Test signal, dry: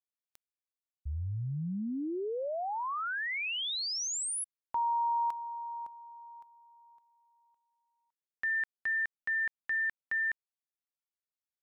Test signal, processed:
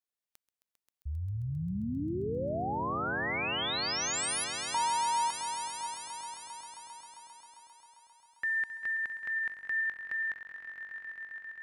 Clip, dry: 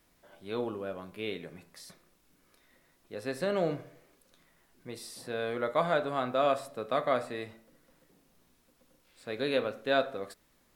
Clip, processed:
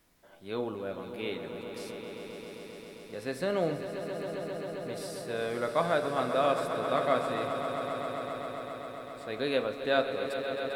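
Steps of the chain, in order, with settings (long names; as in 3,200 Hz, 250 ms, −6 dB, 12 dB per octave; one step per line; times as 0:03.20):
echo that builds up and dies away 133 ms, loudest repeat 5, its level −11.5 dB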